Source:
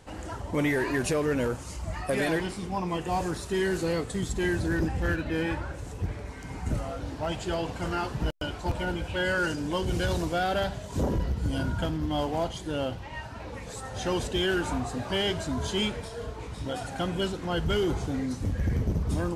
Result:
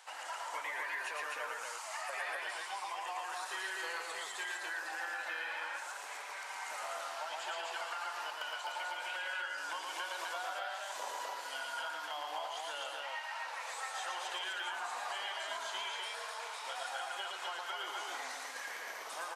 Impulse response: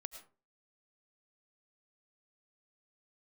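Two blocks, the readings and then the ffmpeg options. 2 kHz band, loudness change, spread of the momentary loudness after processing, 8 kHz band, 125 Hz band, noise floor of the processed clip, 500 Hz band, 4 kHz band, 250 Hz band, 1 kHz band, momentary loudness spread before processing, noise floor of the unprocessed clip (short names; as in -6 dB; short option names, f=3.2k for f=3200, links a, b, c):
-4.0 dB, -9.5 dB, 4 LU, -4.5 dB, under -40 dB, -45 dBFS, -17.0 dB, -6.0 dB, -34.5 dB, -4.5 dB, 10 LU, -40 dBFS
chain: -filter_complex "[0:a]highpass=f=830:w=0.5412,highpass=f=830:w=1.3066,acrossover=split=2900[a][b];[b]acompressor=threshold=-48dB:ratio=4:attack=1:release=60[c];[a][c]amix=inputs=2:normalize=0,alimiter=level_in=5dB:limit=-24dB:level=0:latency=1:release=155,volume=-5dB,acompressor=threshold=-41dB:ratio=6,asplit=2[d][e];[e]aecho=0:1:113.7|253.6:0.708|0.794[f];[d][f]amix=inputs=2:normalize=0,volume=1.5dB"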